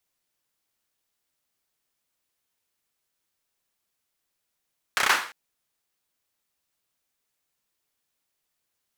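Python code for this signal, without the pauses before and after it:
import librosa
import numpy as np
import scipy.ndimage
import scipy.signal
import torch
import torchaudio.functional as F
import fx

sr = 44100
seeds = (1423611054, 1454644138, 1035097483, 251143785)

y = fx.drum_clap(sr, seeds[0], length_s=0.35, bursts=5, spacing_ms=31, hz=1400.0, decay_s=0.43)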